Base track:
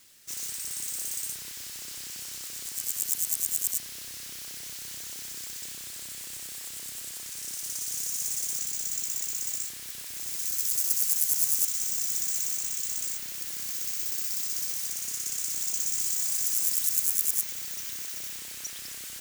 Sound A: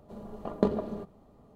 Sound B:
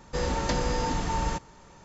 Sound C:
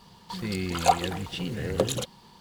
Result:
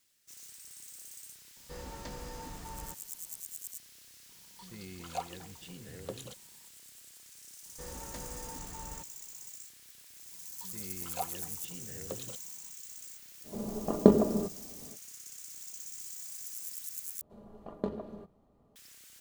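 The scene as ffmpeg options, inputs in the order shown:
-filter_complex "[2:a]asplit=2[a][b];[3:a]asplit=2[c][d];[1:a]asplit=2[e][f];[0:a]volume=-15.5dB[g];[e]equalizer=f=280:t=o:w=2.3:g=8[h];[g]asplit=2[i][j];[i]atrim=end=17.214[k];[f]atrim=end=1.55,asetpts=PTS-STARTPTS,volume=-9dB[l];[j]atrim=start=18.756[m];[a]atrim=end=1.84,asetpts=PTS-STARTPTS,volume=-16.5dB,afade=t=in:d=0.004:c=hsin,afade=t=out:st=1.836:d=0.004:c=hsin,adelay=1560[n];[c]atrim=end=2.4,asetpts=PTS-STARTPTS,volume=-16.5dB,afade=t=in:d=0.004:c=hsin,afade=t=out:st=2.396:d=0.004:c=hsin,adelay=189189S[o];[b]atrim=end=1.84,asetpts=PTS-STARTPTS,volume=-17.5dB,afade=t=in:d=0.004:c=hsin,afade=t=out:st=1.836:d=0.004:c=hsin,adelay=7650[p];[d]atrim=end=2.4,asetpts=PTS-STARTPTS,volume=-16.5dB,afade=t=in:d=0.004:c=hsin,afade=t=out:st=2.396:d=0.004:c=hsin,adelay=10310[q];[h]atrim=end=1.55,asetpts=PTS-STARTPTS,volume=-0.5dB,afade=t=in:d=0.05,afade=t=out:st=1.5:d=0.05,adelay=13430[r];[k][l]acrossfade=d=0.004:c1=hsin:c2=hsin[s];[s][m]acrossfade=d=0.004:c1=hsin:c2=hsin[t];[t][n][o][p][q][r]amix=inputs=6:normalize=0"

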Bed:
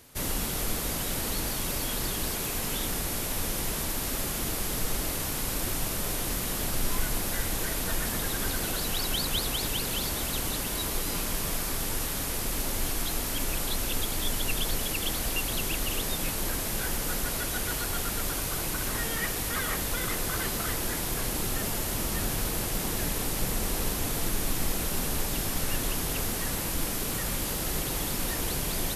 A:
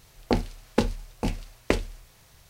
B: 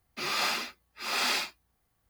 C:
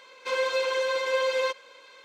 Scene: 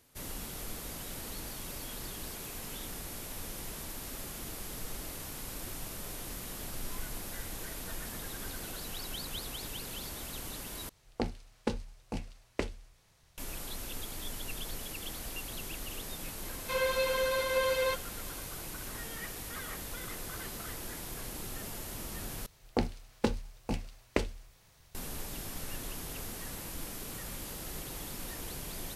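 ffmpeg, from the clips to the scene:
-filter_complex "[1:a]asplit=2[a][b];[0:a]volume=-11dB[c];[a]lowpass=12k[d];[c]asplit=3[e][f][g];[e]atrim=end=10.894[h];[d]atrim=end=2.49,asetpts=PTS-STARTPTS,volume=-10dB[i];[f]atrim=start=13.376:end=22.464[j];[b]atrim=end=2.49,asetpts=PTS-STARTPTS,volume=-6.5dB[k];[g]atrim=start=24.946[l];[3:a]atrim=end=2.04,asetpts=PTS-STARTPTS,volume=-4dB,afade=t=in:d=0.004:c=hsin,afade=t=out:st=2.036:d=0.004:c=hsin,adelay=16430[m];[h][i]acrossfade=d=0.004:c1=hsin:c2=hsin[n];[n][j]acrossfade=d=0.004:c1=hsin:c2=hsin[o];[o][k]acrossfade=d=0.004:c1=hsin:c2=hsin[p];[p][l]acrossfade=d=0.004:c1=hsin:c2=hsin[q];[q][m]amix=inputs=2:normalize=0"

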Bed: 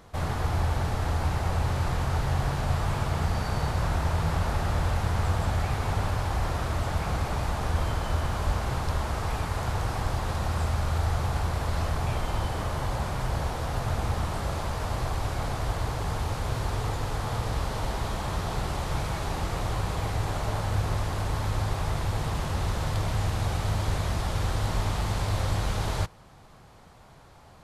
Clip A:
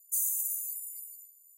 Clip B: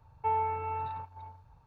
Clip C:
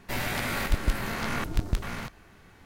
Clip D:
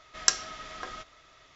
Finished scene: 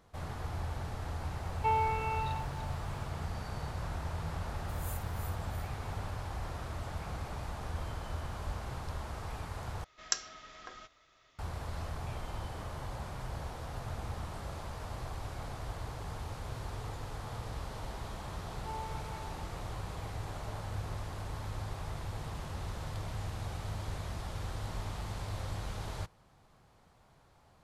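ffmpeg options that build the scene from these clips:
-filter_complex "[2:a]asplit=2[a][b];[0:a]volume=-11.5dB[c];[a]aexciter=amount=2.9:drive=8.2:freq=2.4k[d];[1:a]aeval=exprs='val(0)*pow(10,-18*(0.5-0.5*cos(2*PI*2.9*n/s))/20)':c=same[e];[b]aecho=1:1:6.7:0.75[f];[c]asplit=2[g][h];[g]atrim=end=9.844[i];[4:a]atrim=end=1.55,asetpts=PTS-STARTPTS,volume=-9dB[j];[h]atrim=start=11.386[k];[d]atrim=end=1.66,asetpts=PTS-STARTPTS,volume=-0.5dB,afade=t=in:d=0.004:c=hsin,afade=t=out:st=1.656:d=0.004:c=hsin,adelay=1400[l];[e]atrim=end=1.57,asetpts=PTS-STARTPTS,volume=-13.5dB,afade=t=in:d=0.004:c=hsin,afade=t=out:st=1.566:d=0.004:c=hsin,adelay=4560[m];[f]atrim=end=1.66,asetpts=PTS-STARTPTS,volume=-18dB,afade=t=in:d=0.004:c=hsin,afade=t=out:st=1.656:d=0.004:c=hsin,adelay=18420[n];[i][j]acrossfade=d=0.004:c1=hsin:c2=hsin[o];[o][k]acrossfade=d=0.004:c1=hsin:c2=hsin[p];[p][l][m][n]amix=inputs=4:normalize=0"

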